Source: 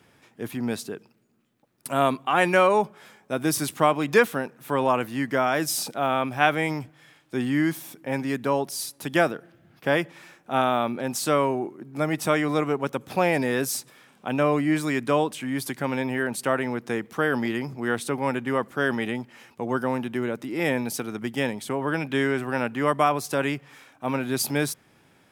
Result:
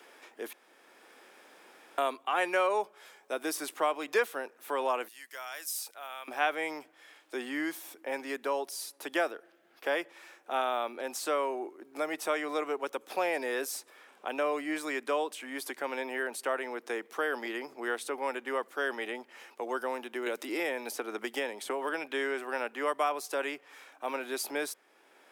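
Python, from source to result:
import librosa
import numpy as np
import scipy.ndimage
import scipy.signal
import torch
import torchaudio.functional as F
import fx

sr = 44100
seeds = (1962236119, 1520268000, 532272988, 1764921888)

y = fx.differentiator(x, sr, at=(5.08, 6.28))
y = fx.band_squash(y, sr, depth_pct=100, at=(20.26, 21.89))
y = fx.edit(y, sr, fx.room_tone_fill(start_s=0.53, length_s=1.45), tone=tone)
y = scipy.signal.sosfilt(scipy.signal.butter(4, 360.0, 'highpass', fs=sr, output='sos'), y)
y = fx.band_squash(y, sr, depth_pct=40)
y = y * librosa.db_to_amplitude(-6.5)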